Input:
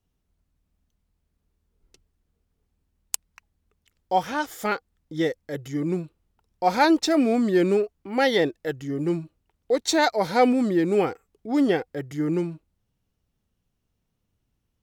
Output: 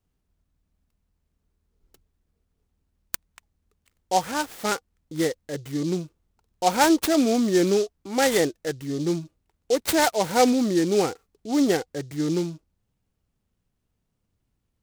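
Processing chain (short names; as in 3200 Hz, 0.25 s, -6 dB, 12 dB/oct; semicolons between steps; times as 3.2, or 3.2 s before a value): noise-modulated delay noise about 4800 Hz, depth 0.057 ms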